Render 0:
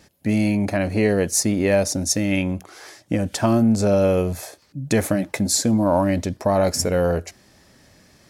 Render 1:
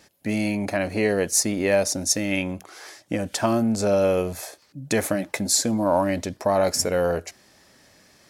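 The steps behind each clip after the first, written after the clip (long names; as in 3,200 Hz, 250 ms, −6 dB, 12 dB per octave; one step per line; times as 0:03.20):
low-shelf EQ 240 Hz −10 dB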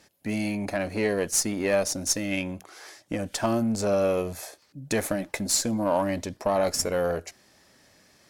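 harmonic generator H 4 −30 dB, 8 −31 dB, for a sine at −6.5 dBFS
level −3.5 dB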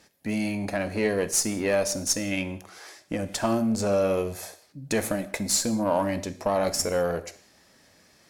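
reverb whose tail is shaped and stops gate 230 ms falling, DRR 11 dB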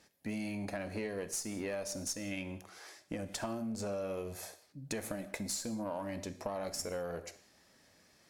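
downward compressor, threshold −28 dBFS, peak gain reduction 9 dB
level −7 dB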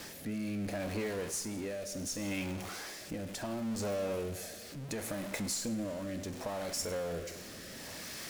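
converter with a step at zero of −37 dBFS
rotating-speaker cabinet horn 0.7 Hz
four-comb reverb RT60 3.8 s, combs from 31 ms, DRR 18.5 dB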